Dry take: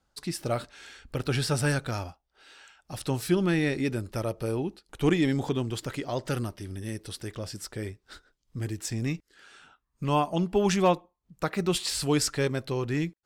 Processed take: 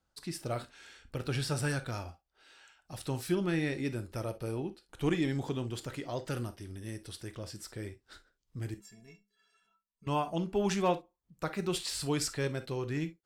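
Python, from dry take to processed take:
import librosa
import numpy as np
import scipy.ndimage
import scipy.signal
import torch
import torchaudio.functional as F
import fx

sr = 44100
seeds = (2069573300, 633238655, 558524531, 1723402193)

y = fx.stiff_resonator(x, sr, f0_hz=200.0, decay_s=0.31, stiffness=0.03, at=(8.74, 10.07))
y = fx.rev_gated(y, sr, seeds[0], gate_ms=80, shape='flat', drr_db=10.0)
y = y * 10.0 ** (-6.5 / 20.0)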